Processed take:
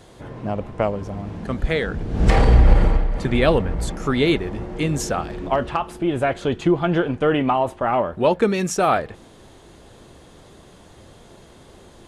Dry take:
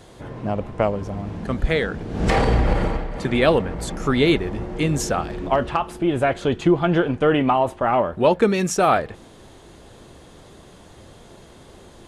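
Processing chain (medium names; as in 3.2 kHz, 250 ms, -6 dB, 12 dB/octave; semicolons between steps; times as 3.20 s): 1.87–3.91 s: bass shelf 88 Hz +12 dB; trim -1 dB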